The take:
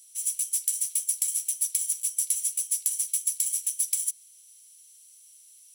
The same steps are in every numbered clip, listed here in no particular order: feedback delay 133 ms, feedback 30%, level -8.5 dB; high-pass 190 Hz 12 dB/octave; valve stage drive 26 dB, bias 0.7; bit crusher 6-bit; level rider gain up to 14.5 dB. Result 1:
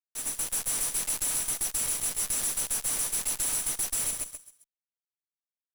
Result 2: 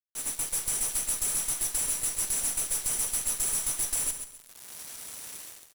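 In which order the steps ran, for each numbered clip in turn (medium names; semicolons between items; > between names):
high-pass > bit crusher > feedback delay > level rider > valve stage; level rider > bit crusher > high-pass > valve stage > feedback delay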